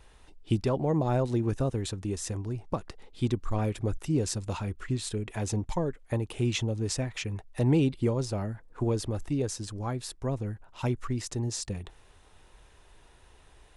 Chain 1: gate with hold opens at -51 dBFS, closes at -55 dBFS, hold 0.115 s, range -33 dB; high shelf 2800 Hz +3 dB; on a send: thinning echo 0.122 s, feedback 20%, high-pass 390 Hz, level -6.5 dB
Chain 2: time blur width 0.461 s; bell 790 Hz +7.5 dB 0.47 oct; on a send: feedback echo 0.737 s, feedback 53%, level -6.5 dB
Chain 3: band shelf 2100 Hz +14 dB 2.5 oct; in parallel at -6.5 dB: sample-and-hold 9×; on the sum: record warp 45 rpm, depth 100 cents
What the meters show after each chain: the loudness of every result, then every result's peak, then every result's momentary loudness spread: -30.5, -34.0, -25.5 LUFS; -13.0, -17.5, -4.0 dBFS; 8, 14, 8 LU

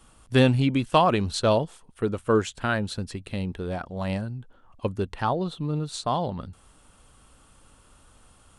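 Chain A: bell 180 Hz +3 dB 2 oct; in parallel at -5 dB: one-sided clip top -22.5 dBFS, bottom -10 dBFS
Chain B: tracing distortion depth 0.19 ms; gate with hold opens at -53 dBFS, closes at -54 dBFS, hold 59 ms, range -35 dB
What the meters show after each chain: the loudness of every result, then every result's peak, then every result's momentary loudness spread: -21.5, -26.0 LUFS; -3.0, -4.5 dBFS; 12, 13 LU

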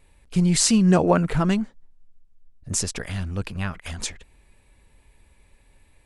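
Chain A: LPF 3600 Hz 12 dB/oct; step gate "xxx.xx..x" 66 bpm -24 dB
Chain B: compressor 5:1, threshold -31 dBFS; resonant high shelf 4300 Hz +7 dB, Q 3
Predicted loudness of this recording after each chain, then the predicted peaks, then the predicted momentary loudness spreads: -24.5, -29.0 LUFS; -5.0, -5.0 dBFS; 19, 13 LU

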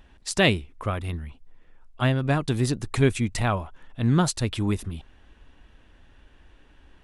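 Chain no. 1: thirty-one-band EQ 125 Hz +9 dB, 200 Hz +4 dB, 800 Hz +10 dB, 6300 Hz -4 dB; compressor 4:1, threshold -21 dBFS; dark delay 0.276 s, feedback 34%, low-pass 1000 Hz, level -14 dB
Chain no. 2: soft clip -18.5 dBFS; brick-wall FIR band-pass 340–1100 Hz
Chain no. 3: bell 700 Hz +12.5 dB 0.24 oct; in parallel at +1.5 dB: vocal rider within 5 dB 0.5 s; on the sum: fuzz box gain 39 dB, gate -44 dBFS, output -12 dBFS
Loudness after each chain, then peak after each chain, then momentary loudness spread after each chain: -27.0, -36.0, -17.0 LUFS; -10.5, -17.0, -7.5 dBFS; 11, 13, 13 LU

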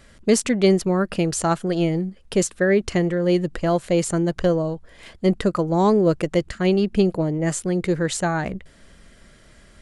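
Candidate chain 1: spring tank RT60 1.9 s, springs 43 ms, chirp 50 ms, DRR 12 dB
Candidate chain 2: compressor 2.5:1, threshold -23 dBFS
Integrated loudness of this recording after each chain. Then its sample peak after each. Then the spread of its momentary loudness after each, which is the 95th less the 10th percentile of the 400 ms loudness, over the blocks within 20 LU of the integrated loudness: -21.0, -26.0 LUFS; -6.0, -12.5 dBFS; 6, 5 LU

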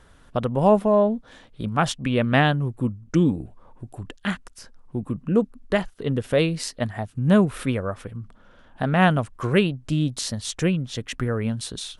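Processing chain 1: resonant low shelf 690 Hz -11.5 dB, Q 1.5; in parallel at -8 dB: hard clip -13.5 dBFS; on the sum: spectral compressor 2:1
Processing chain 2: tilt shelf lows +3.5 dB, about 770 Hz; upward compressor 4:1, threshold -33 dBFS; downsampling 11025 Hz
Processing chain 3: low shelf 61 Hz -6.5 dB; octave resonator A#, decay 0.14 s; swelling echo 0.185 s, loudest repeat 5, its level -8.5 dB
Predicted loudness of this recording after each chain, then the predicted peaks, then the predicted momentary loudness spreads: -26.0, -21.5, -31.0 LUFS; -4.0, -3.5, -11.5 dBFS; 13, 14, 7 LU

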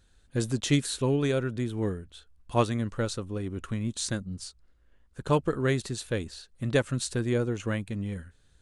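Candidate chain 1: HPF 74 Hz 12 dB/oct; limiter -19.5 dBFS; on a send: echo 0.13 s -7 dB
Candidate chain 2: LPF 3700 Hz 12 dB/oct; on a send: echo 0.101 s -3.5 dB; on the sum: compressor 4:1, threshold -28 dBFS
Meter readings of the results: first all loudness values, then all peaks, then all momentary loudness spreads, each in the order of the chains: -31.5, -33.5 LUFS; -17.0, -18.0 dBFS; 11, 7 LU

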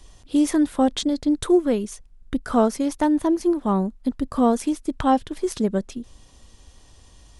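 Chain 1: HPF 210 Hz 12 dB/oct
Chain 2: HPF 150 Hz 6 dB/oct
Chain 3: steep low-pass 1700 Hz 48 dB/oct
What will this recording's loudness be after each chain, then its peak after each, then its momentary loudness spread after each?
-23.0, -23.0, -22.5 LUFS; -7.0, -7.5, -6.5 dBFS; 10, 10, 9 LU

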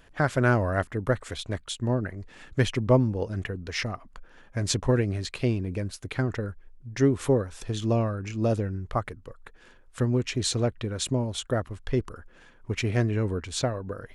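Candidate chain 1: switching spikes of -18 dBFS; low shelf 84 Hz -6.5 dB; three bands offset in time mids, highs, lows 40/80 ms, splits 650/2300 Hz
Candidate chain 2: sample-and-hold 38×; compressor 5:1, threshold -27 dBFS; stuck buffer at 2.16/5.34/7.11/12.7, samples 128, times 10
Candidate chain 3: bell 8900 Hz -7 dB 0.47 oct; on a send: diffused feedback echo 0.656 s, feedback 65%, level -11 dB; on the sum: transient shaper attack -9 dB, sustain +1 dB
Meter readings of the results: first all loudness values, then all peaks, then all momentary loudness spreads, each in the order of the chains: -26.5, -33.0, -30.0 LUFS; -10.0, -14.0, -11.5 dBFS; 8, 8, 11 LU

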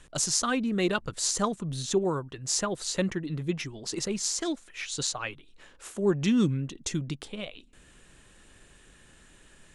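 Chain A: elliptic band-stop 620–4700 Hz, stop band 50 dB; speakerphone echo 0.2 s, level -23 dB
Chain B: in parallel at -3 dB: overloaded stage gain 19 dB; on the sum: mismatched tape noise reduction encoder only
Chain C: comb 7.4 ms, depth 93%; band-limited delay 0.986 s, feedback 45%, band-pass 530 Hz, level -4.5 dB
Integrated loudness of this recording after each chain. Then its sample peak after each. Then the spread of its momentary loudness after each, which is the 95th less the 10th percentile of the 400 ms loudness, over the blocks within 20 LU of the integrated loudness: -30.5, -24.5, -26.5 LUFS; -10.0, -7.0, -7.5 dBFS; 13, 22, 19 LU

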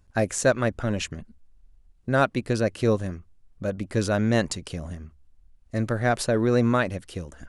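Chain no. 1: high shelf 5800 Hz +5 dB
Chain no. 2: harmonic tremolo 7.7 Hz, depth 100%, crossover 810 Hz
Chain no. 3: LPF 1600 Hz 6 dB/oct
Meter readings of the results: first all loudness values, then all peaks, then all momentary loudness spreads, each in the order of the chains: -25.0, -30.5, -26.0 LUFS; -7.0, -12.0, -9.5 dBFS; 14, 15, 16 LU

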